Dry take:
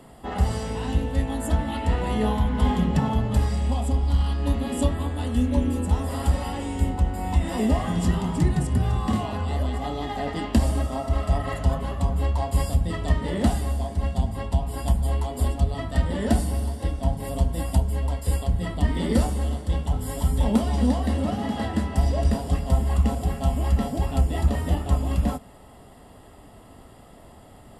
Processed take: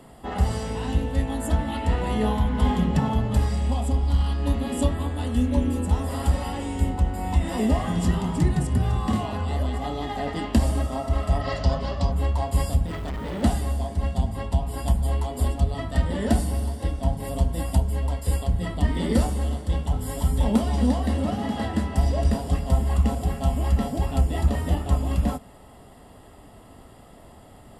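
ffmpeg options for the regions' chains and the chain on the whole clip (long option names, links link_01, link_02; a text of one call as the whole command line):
ffmpeg -i in.wav -filter_complex "[0:a]asettb=1/sr,asplit=3[link_01][link_02][link_03];[link_01]atrim=end=11.414[link_04];[link_02]atrim=start=11.41:end=12.12,asetpts=PTS-STARTPTS,afade=type=in:duration=0.004:curve=qsin,afade=type=out:start_time=0.706:duration=0.004:curve=qsin,lowpass=frequency=5100:width_type=q:width=4.1,equalizer=frequency=590:width_type=o:width=0.22:gain=7,asoftclip=type=hard:threshold=-10dB[link_05];[link_03]atrim=start=12.116[link_06];[link_04][link_05]acrossfade=duration=0.004:curve1=hsin:curve2=qsin[link_07];[link_07][link_06]acrossfade=duration=0.004:curve1=qsin:curve2=hsin,asettb=1/sr,asplit=3[link_08][link_09][link_10];[link_08]atrim=end=12.864[link_11];[link_09]atrim=start=12.86:end=13.43,asetpts=PTS-STARTPTS,afade=type=in:duration=0.004:curve=qsin,afade=type=out:start_time=0.566:duration=0.004:curve=qsin,highshelf=frequency=6500:gain=-9,acrusher=bits=6:mode=log:mix=0:aa=0.000001,volume=27.5dB,asoftclip=hard,volume=-27.5dB[link_12];[link_10]atrim=start=13.426[link_13];[link_11][link_12]acrossfade=duration=0.004:curve1=hsin:curve2=qsin[link_14];[link_14][link_13]acrossfade=duration=0.004:curve1=qsin:curve2=hsin" out.wav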